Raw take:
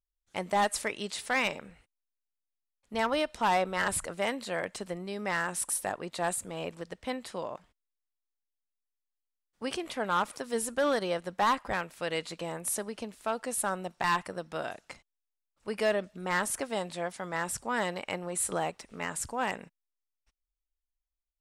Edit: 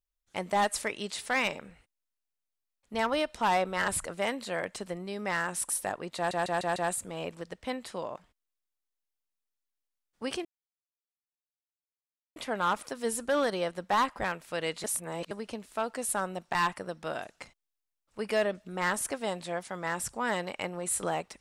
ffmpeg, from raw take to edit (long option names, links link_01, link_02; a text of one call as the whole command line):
ffmpeg -i in.wav -filter_complex "[0:a]asplit=8[link_01][link_02][link_03][link_04][link_05][link_06][link_07][link_08];[link_01]atrim=end=6.312[link_09];[link_02]atrim=start=6.158:end=6.312[link_10];[link_03]atrim=start=6.158:end=6.312[link_11];[link_04]atrim=start=6.158:end=6.312[link_12];[link_05]atrim=start=6.158:end=9.85,asetpts=PTS-STARTPTS,afade=type=out:start_time=3.688:duration=0.004:curve=hsin,apad=pad_dur=1.91[link_13];[link_06]atrim=start=9.85:end=12.332,asetpts=PTS-STARTPTS,afade=type=in:duration=0.004:curve=hsin[link_14];[link_07]atrim=start=12.328:end=12.802,asetpts=PTS-STARTPTS,areverse[link_15];[link_08]atrim=start=12.798[link_16];[link_09][link_10]acrossfade=duration=0.004:curve1=hsin:curve2=hsin[link_17];[link_17][link_11]acrossfade=duration=0.004:curve1=hsin:curve2=hsin[link_18];[link_18][link_12]acrossfade=duration=0.004:curve1=hsin:curve2=hsin[link_19];[link_13][link_14]concat=n=2:v=0:a=1[link_20];[link_19][link_20]acrossfade=duration=0.004:curve1=hsin:curve2=hsin[link_21];[link_21][link_15]acrossfade=duration=0.004:curve1=hsin:curve2=hsin[link_22];[link_22][link_16]acrossfade=duration=0.004:curve1=hsin:curve2=hsin" out.wav